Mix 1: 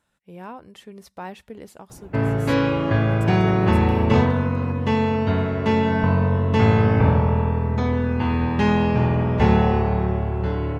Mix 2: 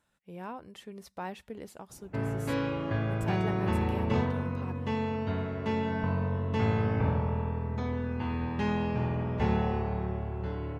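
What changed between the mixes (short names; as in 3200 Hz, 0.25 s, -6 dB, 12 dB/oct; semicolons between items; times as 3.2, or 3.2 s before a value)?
speech -3.5 dB; background -11.0 dB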